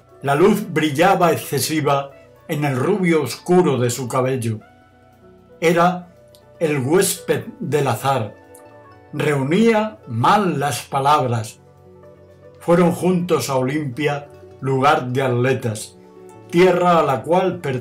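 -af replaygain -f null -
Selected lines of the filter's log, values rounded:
track_gain = -1.9 dB
track_peak = 0.303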